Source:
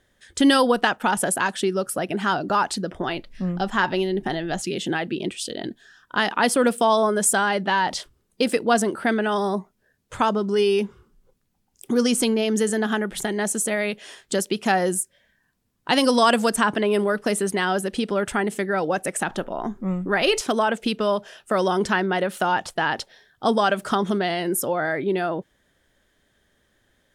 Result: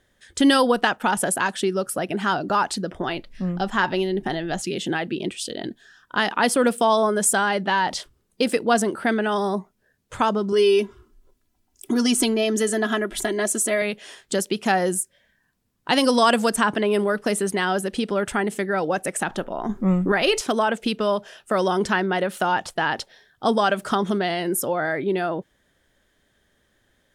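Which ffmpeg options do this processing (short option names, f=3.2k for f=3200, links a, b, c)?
-filter_complex "[0:a]asettb=1/sr,asplit=3[a][b][c];[a]atrim=end=10.524[d];[b]atrim=start=10.52:end=13.82,asetpts=PTS-STARTPTS,afade=t=in:d=0.004:c=qsin,afade=t=out:st=3.296:d=0.004:c=qsin,aecho=1:1:3:0.73,atrim=end_sample=145530[e];[c]atrim=start=13.816[f];[d][e]acrossfade=d=0.004:c1=hsin:c2=qsin[g];[g][f]acrossfade=d=0.004:c1=qsin:c2=hsin,asettb=1/sr,asplit=3[h][i][j];[h]atrim=end=19.694[k];[i]atrim=start=19.69:end=20.12,asetpts=PTS-STARTPTS,afade=t=in:d=0.004:c=qsin,afade=t=out:st=0.426:d=0.004:c=qsin,acontrast=52[l];[j]atrim=start=20.116[m];[k][l]acrossfade=d=0.004:c1=hsin:c2=qsin[n];[n][m]acrossfade=d=0.004:c1=qsin:c2=hsin"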